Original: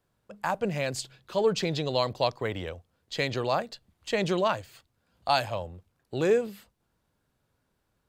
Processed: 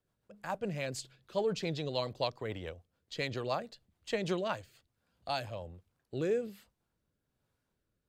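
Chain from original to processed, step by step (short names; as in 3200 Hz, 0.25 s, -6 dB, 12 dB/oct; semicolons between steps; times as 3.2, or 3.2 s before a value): rotary speaker horn 7 Hz, later 1.2 Hz, at 3.93; gain -5 dB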